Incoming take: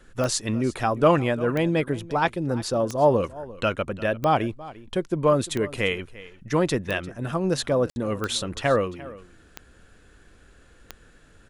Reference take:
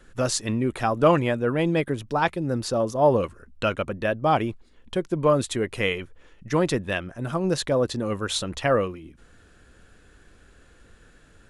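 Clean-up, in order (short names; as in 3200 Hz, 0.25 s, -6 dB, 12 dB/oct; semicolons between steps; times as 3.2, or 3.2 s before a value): de-click; room tone fill 7.9–7.96; inverse comb 0.347 s -18.5 dB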